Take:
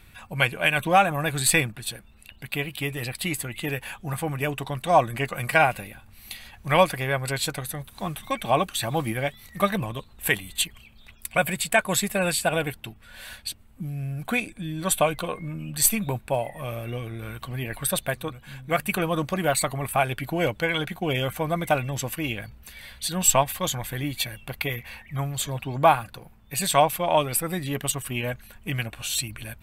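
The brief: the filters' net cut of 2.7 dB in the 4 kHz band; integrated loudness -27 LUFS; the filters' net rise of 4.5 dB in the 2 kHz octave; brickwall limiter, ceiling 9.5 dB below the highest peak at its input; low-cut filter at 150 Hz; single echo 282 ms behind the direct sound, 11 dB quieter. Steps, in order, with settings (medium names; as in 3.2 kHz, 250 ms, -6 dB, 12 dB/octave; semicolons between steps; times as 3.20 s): high-pass 150 Hz; peaking EQ 2 kHz +7.5 dB; peaking EQ 4 kHz -6.5 dB; peak limiter -11.5 dBFS; delay 282 ms -11 dB; trim -0.5 dB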